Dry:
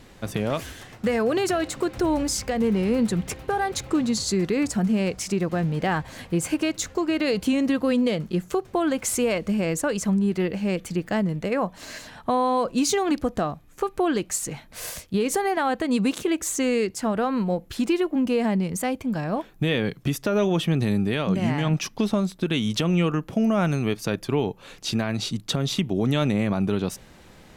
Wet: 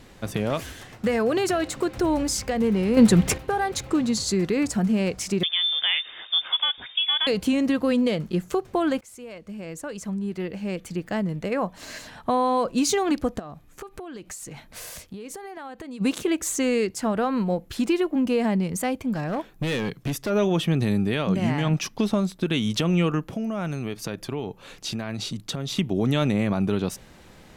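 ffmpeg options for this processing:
ffmpeg -i in.wav -filter_complex "[0:a]asettb=1/sr,asplit=3[link_01][link_02][link_03];[link_01]atrim=end=5.434[link_04];[link_02]atrim=start=5.43:end=7.27,asetpts=PTS-STARTPTS,afade=type=in:duration=0.004:curve=qsin,afade=type=out:start_time=1.836:duration=0.004:curve=qsin,lowpass=frequency=3100:width_type=q:width=0.5098,lowpass=frequency=3100:width_type=q:width=0.6013,lowpass=frequency=3100:width_type=q:width=0.9,lowpass=frequency=3100:width_type=q:width=2.563,afreqshift=-3700[link_05];[link_03]atrim=start=7.266[link_06];[link_04][link_05]acrossfade=duration=0.004:curve1=hsin:curve2=qsin[link_07];[link_07][link_06]acrossfade=duration=0.004:curve1=qsin:curve2=hsin,asplit=3[link_08][link_09][link_10];[link_08]afade=type=out:start_time=13.38:duration=0.02[link_11];[link_09]acompressor=threshold=-34dB:ratio=10:attack=3.2:release=140:knee=1:detection=peak,afade=type=in:start_time=13.38:duration=0.02,afade=type=out:start_time=16:duration=0.02[link_12];[link_10]afade=type=in:start_time=16:duration=0.02[link_13];[link_11][link_12][link_13]amix=inputs=3:normalize=0,asplit=3[link_14][link_15][link_16];[link_14]afade=type=out:start_time=19.13:duration=0.02[link_17];[link_15]asoftclip=type=hard:threshold=-22.5dB,afade=type=in:start_time=19.13:duration=0.02,afade=type=out:start_time=20.29:duration=0.02[link_18];[link_16]afade=type=in:start_time=20.29:duration=0.02[link_19];[link_17][link_18][link_19]amix=inputs=3:normalize=0,asettb=1/sr,asplit=3[link_20][link_21][link_22];[link_20]atrim=end=23.314[link_23];[link_21]atrim=start=23.31:end=25.78,asetpts=PTS-STARTPTS,afade=type=in:duration=0.004:curve=qsin,afade=type=out:start_time=2.466:duration=0.004:curve=qsin,acompressor=threshold=-27dB:ratio=3:attack=3.2:release=140:knee=1:detection=peak[link_24];[link_22]atrim=start=25.776[link_25];[link_23][link_24]acrossfade=duration=0.004:curve1=hsin:curve2=qsin[link_26];[link_26][link_25]acrossfade=duration=0.004:curve1=qsin:curve2=hsin,asplit=4[link_27][link_28][link_29][link_30];[link_27]atrim=end=2.972[link_31];[link_28]atrim=start=2.968:end=3.382,asetpts=PTS-STARTPTS,volume=8dB[link_32];[link_29]atrim=start=3.378:end=9.01,asetpts=PTS-STARTPTS,afade=type=out:start_time=5.628:duration=0.004:curve=hsin:silence=0.0630957[link_33];[link_30]atrim=start=9.01,asetpts=PTS-STARTPTS,afade=type=in:duration=2.97:silence=0.0630957[link_34];[link_31][link_32]acrossfade=duration=0.004:curve1=hsin:curve2=hsin[link_35];[link_33][link_34]concat=n=2:v=0:a=1[link_36];[link_35][link_36]acrossfade=duration=0.004:curve1=hsin:curve2=hsin" out.wav

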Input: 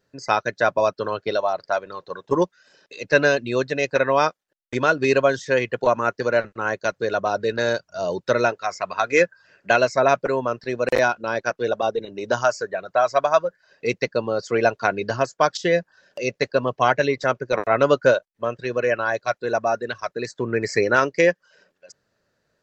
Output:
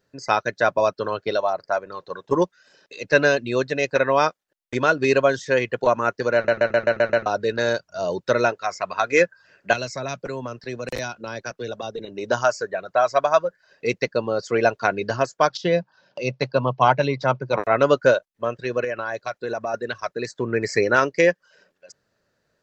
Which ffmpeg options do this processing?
ffmpeg -i in.wav -filter_complex "[0:a]asettb=1/sr,asplit=3[link_01][link_02][link_03];[link_01]atrim=end=1.504[link_04];[link_02]atrim=start=1.5:end=1.92,asetpts=PTS-STARTPTS,afade=type=in:duration=0.004:curve=qsin,afade=type=out:start_time=0.416:duration=0.004:curve=qsin,equalizer=frequency=3400:width_type=o:width=0.7:gain=-11[link_05];[link_03]atrim=start=1.916[link_06];[link_04][link_05]acrossfade=duration=0.004:curve1=hsin:curve2=qsin[link_07];[link_07][link_06]acrossfade=duration=0.004:curve1=qsin:curve2=hsin,asettb=1/sr,asplit=3[link_08][link_09][link_10];[link_08]atrim=end=9.734[link_11];[link_09]atrim=start=9.73:end=11.99,asetpts=PTS-STARTPTS,afade=type=in:duration=0.004:curve=qsin,afade=type=out:start_time=2.256:duration=0.004:curve=qsin,acrossover=split=210|3000[link_12][link_13][link_14];[link_13]acompressor=threshold=-29dB:ratio=5:attack=3.2:release=140:knee=2.83:detection=peak[link_15];[link_12][link_15][link_14]amix=inputs=3:normalize=0[link_16];[link_10]atrim=start=11.986[link_17];[link_11][link_16]acrossfade=duration=0.004:curve1=hsin:curve2=qsin[link_18];[link_18][link_17]acrossfade=duration=0.004:curve1=qsin:curve2=hsin,asettb=1/sr,asplit=3[link_19][link_20][link_21];[link_19]atrim=end=15.494[link_22];[link_20]atrim=start=15.49:end=17.59,asetpts=PTS-STARTPTS,afade=type=in:duration=0.004:curve=qsin,afade=type=out:start_time=2.096:duration=0.004:curve=qsin,highpass=120,equalizer=frequency=130:width_type=q:width=4:gain=10,equalizer=frequency=190:width_type=q:width=4:gain=3,equalizer=frequency=420:width_type=q:width=4:gain=-4,equalizer=frequency=910:width_type=q:width=4:gain=7,equalizer=frequency=1800:width_type=q:width=4:gain=-9,lowpass=frequency=5400:width=0.5412,lowpass=frequency=5400:width=1.3066[link_23];[link_21]atrim=start=17.586[link_24];[link_22][link_23]acrossfade=duration=0.004:curve1=hsin:curve2=qsin[link_25];[link_25][link_24]acrossfade=duration=0.004:curve1=qsin:curve2=hsin,asettb=1/sr,asplit=3[link_26][link_27][link_28];[link_26]atrim=end=18.844[link_29];[link_27]atrim=start=18.84:end=19.74,asetpts=PTS-STARTPTS,afade=type=in:duration=0.004:curve=qsin,afade=type=out:start_time=0.896:duration=0.004:curve=qsin,acompressor=threshold=-23dB:ratio=5:attack=3.2:release=140:knee=1:detection=peak[link_30];[link_28]atrim=start=19.736[link_31];[link_29][link_30]acrossfade=duration=0.004:curve1=hsin:curve2=qsin[link_32];[link_32][link_31]acrossfade=duration=0.004:curve1=qsin:curve2=hsin,asplit=8[link_33][link_34][link_35][link_36][link_37][link_38][link_39][link_40];[link_33]atrim=end=6.482[link_41];[link_34]atrim=start=6.348:end=6.482[link_42];[link_35]atrim=start=6.348:end=6.482[link_43];[link_36]atrim=start=6.348:end=6.482[link_44];[link_37]atrim=start=6.348:end=6.482[link_45];[link_38]atrim=start=6.348:end=6.482[link_46];[link_39]atrim=start=6.348:end=6.482[link_47];[link_40]atrim=start=7.258[link_48];[link_41][link_42]acrossfade=duration=0.004:curve1=hsin:curve2=hsin[link_49];[link_49][link_43]acrossfade=duration=0.004:curve1=hsin:curve2=hsin[link_50];[link_50][link_44]acrossfade=duration=0.004:curve1=hsin:curve2=hsin[link_51];[link_51][link_45]acrossfade=duration=0.004:curve1=hsin:curve2=hsin[link_52];[link_52][link_46]acrossfade=duration=0.004:curve1=hsin:curve2=hsin[link_53];[link_53][link_47]acrossfade=duration=0.004:curve1=hsin:curve2=hsin[link_54];[link_54][link_48]acrossfade=duration=0.004:curve1=hsin:curve2=hsin" out.wav

